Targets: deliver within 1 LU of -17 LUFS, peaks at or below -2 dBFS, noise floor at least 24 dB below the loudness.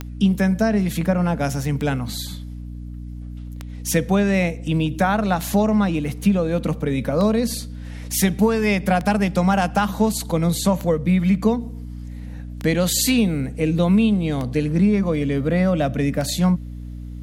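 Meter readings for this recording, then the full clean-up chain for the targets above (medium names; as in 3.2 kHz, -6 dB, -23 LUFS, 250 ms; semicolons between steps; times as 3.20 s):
clicks found 10; hum 60 Hz; highest harmonic 300 Hz; hum level -31 dBFS; loudness -20.5 LUFS; peak level -7.0 dBFS; loudness target -17.0 LUFS
-> de-click; de-hum 60 Hz, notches 5; trim +3.5 dB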